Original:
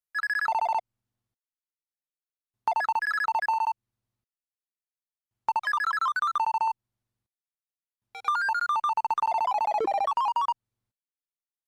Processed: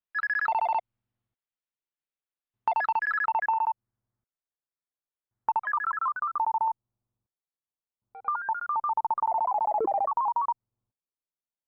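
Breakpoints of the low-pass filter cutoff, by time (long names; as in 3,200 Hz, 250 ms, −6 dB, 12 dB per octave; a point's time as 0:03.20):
low-pass filter 24 dB per octave
0:02.96 3,500 Hz
0:03.69 1,800 Hz
0:05.57 1,800 Hz
0:06.27 1,200 Hz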